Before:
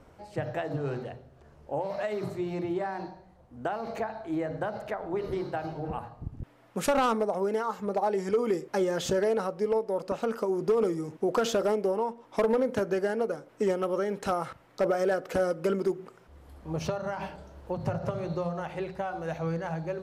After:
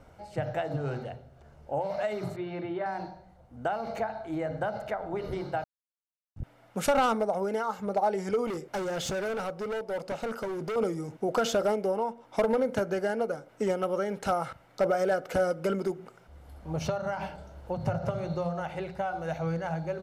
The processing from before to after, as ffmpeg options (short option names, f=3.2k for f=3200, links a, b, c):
-filter_complex "[0:a]asettb=1/sr,asplit=3[a][b][c];[a]atrim=end=2.364[d];[b]atrim=start=2.36:end=2.86,asetpts=PTS-STARTPTS,afade=t=in:d=0.004:c=qsin,afade=t=out:st=0.496:d=0.004:c=qsin,highpass=140,equalizer=f=190:t=q:w=4:g=-5,equalizer=f=780:t=q:w=4:g=-4,equalizer=f=1.6k:t=q:w=4:g=4,lowpass=f=3.8k:w=0.5412,lowpass=f=3.8k:w=1.3066[e];[c]atrim=start=2.856[f];[d][e]acrossfade=d=0.004:c1=hsin:c2=qsin[g];[g][f]acrossfade=d=0.004:c1=qsin:c2=hsin,asettb=1/sr,asplit=3[h][i][j];[h]atrim=end=8.474[k];[i]atrim=start=8.47:end=10.76,asetpts=PTS-STARTPTS,afade=t=in:d=0.004:c=qsin,afade=t=out:st=2.286:d=0.004:c=qsin,asoftclip=type=hard:threshold=-28.5dB[l];[j]atrim=start=10.756[m];[k][l]acrossfade=d=0.004:c1=hsin:c2=qsin[n];[n][m]acrossfade=d=0.004:c1=qsin:c2=hsin,asplit=3[o][p][q];[o]atrim=end=5.64,asetpts=PTS-STARTPTS,afade=t=out:st=5.636:d=0.004:c=hsin[r];[p]atrim=start=5.64:end=6.36,asetpts=PTS-STARTPTS,volume=0[s];[q]atrim=start=6.36,asetpts=PTS-STARTPTS,afade=t=in:d=0.004:c=hsin[t];[r][s][t]concat=n=3:v=0:a=1,aecho=1:1:1.4:0.32"